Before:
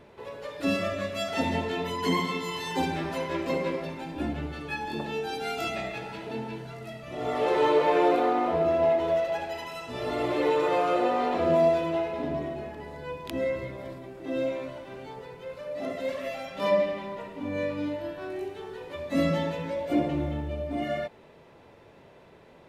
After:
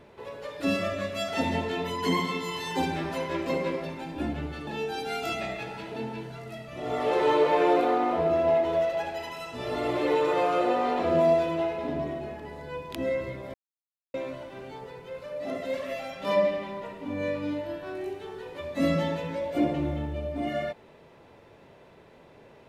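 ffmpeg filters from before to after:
-filter_complex "[0:a]asplit=4[s0][s1][s2][s3];[s0]atrim=end=4.672[s4];[s1]atrim=start=5.018:end=13.89,asetpts=PTS-STARTPTS,afade=t=out:st=8.868:d=0.004:c=hsin[s5];[s2]atrim=start=13.89:end=14.49,asetpts=PTS-STARTPTS,volume=0[s6];[s3]atrim=start=14.49,asetpts=PTS-STARTPTS,afade=t=in:d=0.004:c=hsin[s7];[s5][s6][s7]concat=n=3:v=0:a=1[s8];[s4][s8]acrossfade=d=0.004:c1=hsin:c2=hsin"

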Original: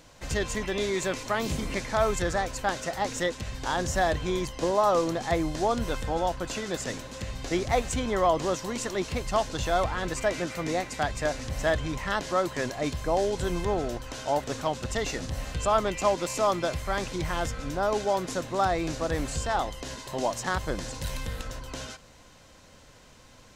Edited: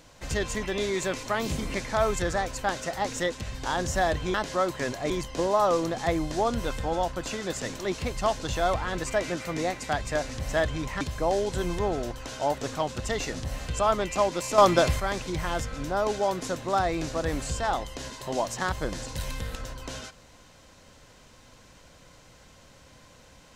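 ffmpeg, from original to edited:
-filter_complex "[0:a]asplit=7[s0][s1][s2][s3][s4][s5][s6];[s0]atrim=end=4.342[s7];[s1]atrim=start=12.108:end=12.872[s8];[s2]atrim=start=4.338:end=7.032[s9];[s3]atrim=start=8.888:end=12.112[s10];[s4]atrim=start=12.868:end=16.442[s11];[s5]atrim=start=16.438:end=16.862,asetpts=PTS-STARTPTS,volume=2.37[s12];[s6]atrim=start=16.858[s13];[s7][s8]acrossfade=d=0.004:c1=hsin:c2=hsin[s14];[s14][s9]acrossfade=d=0.004:c1=hsin:c2=hsin[s15];[s15][s10]acrossfade=d=0.004:c1=hsin:c2=hsin[s16];[s16][s11]acrossfade=d=0.004:c1=hsin:c2=hsin[s17];[s17][s12]acrossfade=d=0.004:c1=hsin:c2=hsin[s18];[s18][s13]acrossfade=d=0.004:c1=hsin:c2=hsin"

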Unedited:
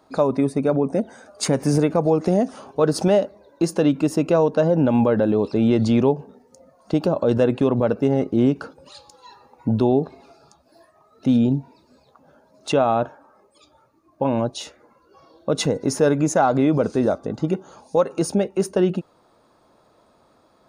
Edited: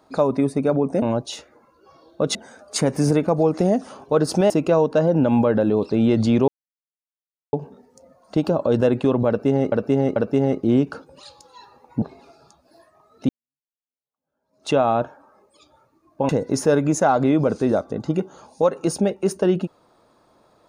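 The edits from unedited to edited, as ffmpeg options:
-filter_complex "[0:a]asplit=10[s0][s1][s2][s3][s4][s5][s6][s7][s8][s9];[s0]atrim=end=1.022[s10];[s1]atrim=start=14.298:end=15.632[s11];[s2]atrim=start=1.018:end=3.172[s12];[s3]atrim=start=4.118:end=6.1,asetpts=PTS-STARTPTS,afade=t=out:st=1.978:d=0.004:c=hsin,apad=pad_dur=1.05[s13];[s4]atrim=start=6.1:end=8.292,asetpts=PTS-STARTPTS,afade=t=in:d=0.004:c=hsin[s14];[s5]atrim=start=7.848:end=8.292[s15];[s6]atrim=start=7.848:end=9.712[s16];[s7]atrim=start=10.028:end=11.3,asetpts=PTS-STARTPTS,afade=t=out:st=1.268:d=0.004:c=hsin[s17];[s8]atrim=start=11.3:end=14.302,asetpts=PTS-STARTPTS,afade=t=in:d=1.42:c=exp[s18];[s9]atrim=start=15.628[s19];[s10][s11]acrossfade=d=0.004:c1=hsin:c2=hsin[s20];[s20][s12]acrossfade=d=0.004:c1=hsin:c2=hsin[s21];[s13][s14]concat=n=2:v=0:a=1[s22];[s21][s22]acrossfade=d=0.004:c1=hsin:c2=hsin[s23];[s23][s15]acrossfade=d=0.004:c1=hsin:c2=hsin[s24];[s24][s16]acrossfade=d=0.004:c1=hsin:c2=hsin[s25];[s17][s18]concat=n=2:v=0:a=1[s26];[s25][s26]acrossfade=d=0.004:c1=hsin:c2=hsin[s27];[s27][s19]acrossfade=d=0.004:c1=hsin:c2=hsin"

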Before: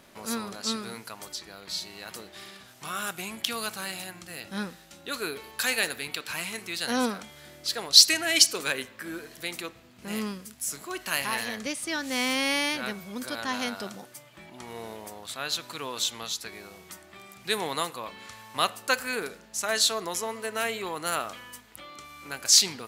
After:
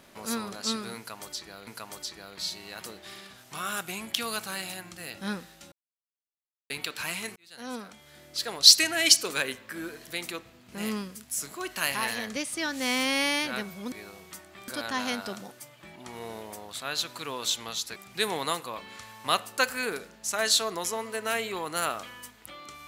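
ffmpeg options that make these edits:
-filter_complex "[0:a]asplit=8[s0][s1][s2][s3][s4][s5][s6][s7];[s0]atrim=end=1.672[s8];[s1]atrim=start=0.968:end=5.02,asetpts=PTS-STARTPTS,afade=t=out:st=4.048:d=0.004:c=hsin[s9];[s2]atrim=start=5.02:end=6,asetpts=PTS-STARTPTS,volume=0[s10];[s3]atrim=start=6:end=6.66,asetpts=PTS-STARTPTS,afade=t=in:d=0.004:c=hsin,afade=t=out:st=0.656:d=0.004:c=hsin[s11];[s4]atrim=start=6.66:end=13.222,asetpts=PTS-STARTPTS,afade=t=in:d=1.27[s12];[s5]atrim=start=16.498:end=17.262[s13];[s6]atrim=start=13.218:end=16.502[s14];[s7]atrim=start=17.258[s15];[s9][s10][s11][s12]concat=n=4:v=0:a=1[s16];[s8][s16]acrossfade=d=0.004:c1=hsin:c2=hsin[s17];[s17][s13]acrossfade=d=0.004:c1=hsin:c2=hsin[s18];[s18][s14]acrossfade=d=0.004:c1=hsin:c2=hsin[s19];[s19][s15]acrossfade=d=0.004:c1=hsin:c2=hsin"

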